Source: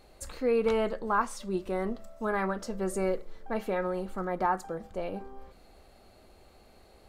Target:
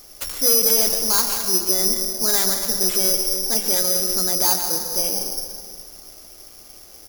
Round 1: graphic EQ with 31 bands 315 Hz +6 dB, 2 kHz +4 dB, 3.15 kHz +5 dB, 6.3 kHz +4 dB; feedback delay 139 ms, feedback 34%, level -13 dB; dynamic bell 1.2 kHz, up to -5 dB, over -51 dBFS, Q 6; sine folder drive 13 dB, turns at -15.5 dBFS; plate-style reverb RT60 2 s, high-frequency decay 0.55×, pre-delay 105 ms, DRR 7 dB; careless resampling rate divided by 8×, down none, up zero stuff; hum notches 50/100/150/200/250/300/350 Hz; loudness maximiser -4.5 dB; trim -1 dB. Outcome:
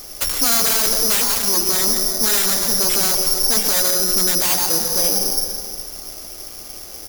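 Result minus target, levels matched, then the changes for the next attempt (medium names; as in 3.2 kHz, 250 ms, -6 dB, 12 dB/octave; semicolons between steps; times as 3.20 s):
sine folder: distortion +20 dB
change: sine folder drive 4 dB, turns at -15.5 dBFS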